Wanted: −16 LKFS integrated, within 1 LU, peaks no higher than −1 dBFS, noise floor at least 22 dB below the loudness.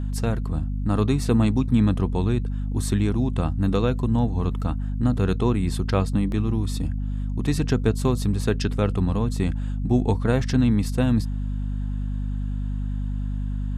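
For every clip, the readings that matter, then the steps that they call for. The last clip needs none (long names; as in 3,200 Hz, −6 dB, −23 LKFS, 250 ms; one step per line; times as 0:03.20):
number of dropouts 1; longest dropout 1.4 ms; mains hum 50 Hz; hum harmonics up to 250 Hz; level of the hum −24 dBFS; integrated loudness −24.0 LKFS; sample peak −7.5 dBFS; target loudness −16.0 LKFS
→ repair the gap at 0:06.32, 1.4 ms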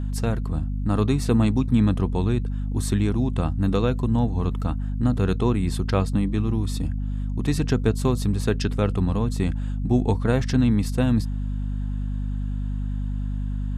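number of dropouts 0; mains hum 50 Hz; hum harmonics up to 250 Hz; level of the hum −24 dBFS
→ mains-hum notches 50/100/150/200/250 Hz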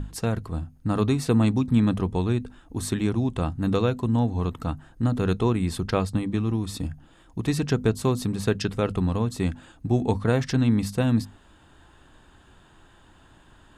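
mains hum none found; integrated loudness −25.5 LKFS; sample peak −9.0 dBFS; target loudness −16.0 LKFS
→ level +9.5 dB
brickwall limiter −1 dBFS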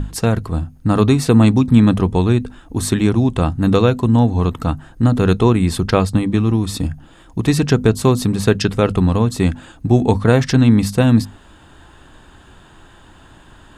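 integrated loudness −16.0 LKFS; sample peak −1.0 dBFS; background noise floor −45 dBFS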